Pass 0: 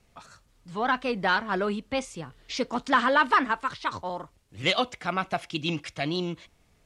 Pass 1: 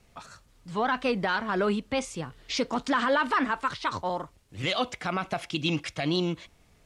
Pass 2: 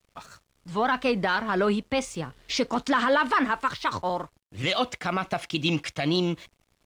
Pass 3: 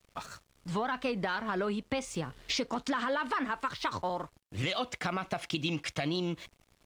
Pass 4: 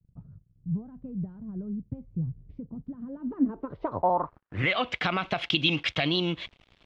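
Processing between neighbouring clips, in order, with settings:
brickwall limiter −19.5 dBFS, peak gain reduction 9 dB; level +3 dB
dead-zone distortion −58 dBFS; level +2.5 dB
downward compressor 5 to 1, threshold −32 dBFS, peak gain reduction 12 dB; level +2 dB
low-pass filter sweep 140 Hz → 3,300 Hz, 0:02.96–0:04.99; level +4.5 dB

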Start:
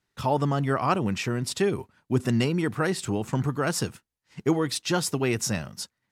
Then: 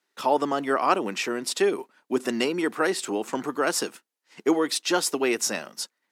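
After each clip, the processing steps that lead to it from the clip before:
high-pass filter 280 Hz 24 dB per octave
level +3 dB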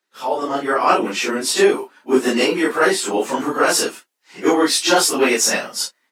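random phases in long frames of 100 ms
parametric band 79 Hz −9.5 dB 1.9 octaves
automatic gain control gain up to 11.5 dB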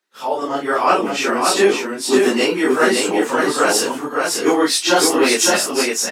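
single-tap delay 563 ms −3.5 dB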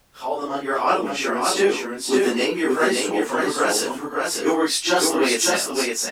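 background noise pink −55 dBFS
level −4.5 dB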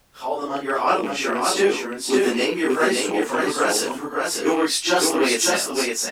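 loose part that buzzes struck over −31 dBFS, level −24 dBFS

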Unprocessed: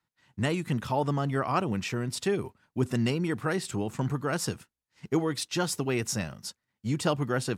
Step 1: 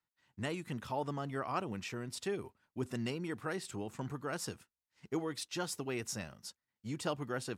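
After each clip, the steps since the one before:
parametric band 140 Hz −4.5 dB 1.4 octaves
level −8.5 dB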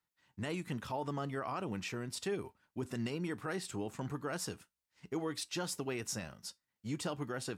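brickwall limiter −29.5 dBFS, peak gain reduction 7.5 dB
tuned comb filter 60 Hz, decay 0.18 s, harmonics odd, mix 40%
level +4.5 dB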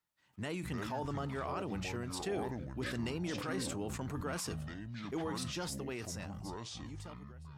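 fade-out on the ending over 2.43 s
delay with pitch and tempo change per echo 88 ms, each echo −7 semitones, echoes 2, each echo −6 dB
level that may fall only so fast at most 27 dB per second
level −1.5 dB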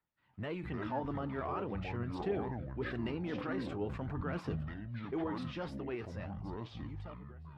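phase shifter 0.45 Hz, delay 4.1 ms, feedback 32%
high-frequency loss of the air 390 metres
flanger 1.7 Hz, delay 1 ms, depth 8.9 ms, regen +73%
level +6 dB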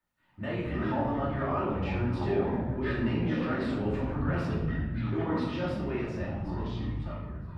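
rectangular room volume 390 cubic metres, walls mixed, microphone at 2.6 metres

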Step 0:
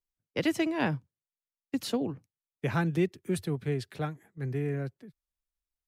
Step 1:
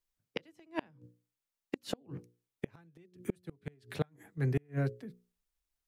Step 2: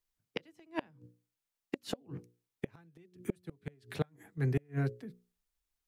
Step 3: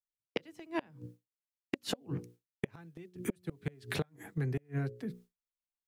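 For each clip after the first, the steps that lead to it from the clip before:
mains-hum notches 60/120/180/240/300/360/420/480/540 Hz; gate with flip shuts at −23 dBFS, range −36 dB; level +4 dB
notch filter 560 Hz, Q 13
downward expander −57 dBFS; downward compressor 12 to 1, threshold −41 dBFS, peak gain reduction 16.5 dB; level +10 dB

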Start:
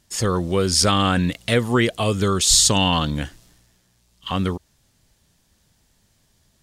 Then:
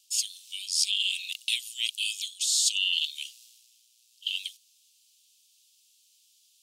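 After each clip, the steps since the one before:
Butterworth high-pass 2,600 Hz 72 dB per octave
reversed playback
downward compressor 6 to 1, threshold −26 dBFS, peak gain reduction 13.5 dB
reversed playback
level +3 dB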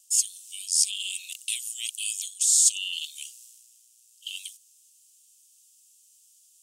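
octave-band graphic EQ 2,000/4,000/8,000 Hz −7/−11/+8 dB
level +3 dB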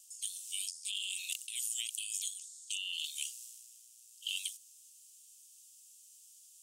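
compressor whose output falls as the input rises −36 dBFS, ratio −1
level −6 dB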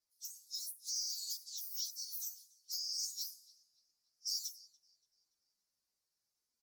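partials spread apart or drawn together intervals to 123%
repeating echo 287 ms, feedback 53%, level −20 dB
low-pass that shuts in the quiet parts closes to 2,500 Hz, open at −42 dBFS
level +5.5 dB

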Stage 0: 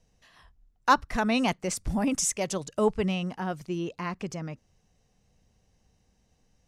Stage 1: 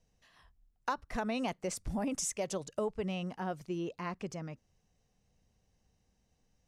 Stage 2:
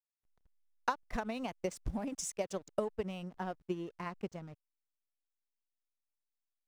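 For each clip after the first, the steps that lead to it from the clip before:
dynamic equaliser 550 Hz, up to +5 dB, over −39 dBFS, Q 1; downward compressor 10 to 1, threshold −24 dBFS, peak gain reduction 12 dB; level −6.5 dB
transient designer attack +8 dB, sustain −7 dB; slack as between gear wheels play −44.5 dBFS; level −5 dB

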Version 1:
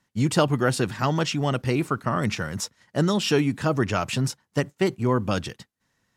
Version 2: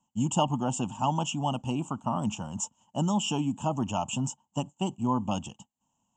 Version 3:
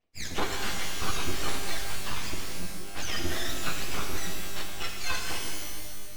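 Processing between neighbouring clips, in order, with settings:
drawn EQ curve 120 Hz 0 dB, 240 Hz +8 dB, 430 Hz −9 dB, 890 Hz +14 dB, 2,000 Hz −29 dB, 2,900 Hz +9 dB, 4,200 Hz −21 dB, 7,300 Hz +14 dB, 11,000 Hz −25 dB; level −8.5 dB
frequency axis turned over on the octave scale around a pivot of 720 Hz; full-wave rectification; reverb with rising layers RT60 1.8 s, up +12 semitones, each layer −2 dB, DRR 2.5 dB

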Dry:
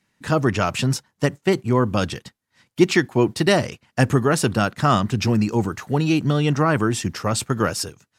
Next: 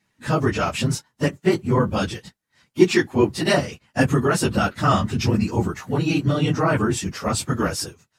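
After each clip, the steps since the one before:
random phases in long frames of 50 ms
level −1 dB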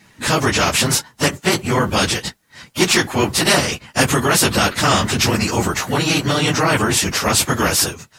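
every bin compressed towards the loudest bin 2 to 1

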